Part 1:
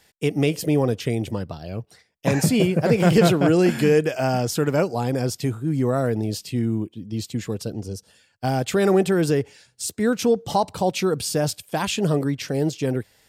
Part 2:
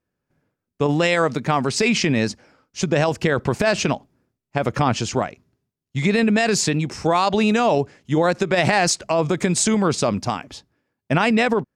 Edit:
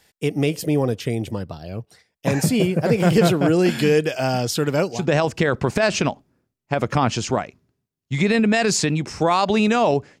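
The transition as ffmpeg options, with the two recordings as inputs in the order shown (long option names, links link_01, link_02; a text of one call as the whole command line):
ffmpeg -i cue0.wav -i cue1.wav -filter_complex "[0:a]asettb=1/sr,asplit=3[link_01][link_02][link_03];[link_01]atrim=end=3.654[link_04];[link_02]atrim=start=3.65:end=5.06,asetpts=PTS-STARTPTS,afade=type=in:duration=0.004:curve=qsin,afade=type=out:start_time=1.406:duration=0.004:curve=qsin,equalizer=frequency=3700:width=1.2:gain=7.5[link_05];[link_03]atrim=start=5.056[link_06];[link_04][link_05]acrossfade=duration=0.004:curve1=hsin:curve2=qsin[link_07];[link_07][link_06]acrossfade=duration=0.004:curve1=qsin:curve2=hsin,apad=whole_dur=10.2,atrim=end=10.2,atrim=end=5.06,asetpts=PTS-STARTPTS[link_08];[1:a]atrim=start=2.72:end=8.04,asetpts=PTS-STARTPTS[link_09];[link_08][link_09]acrossfade=duration=0.18:curve1=tri:curve2=tri" out.wav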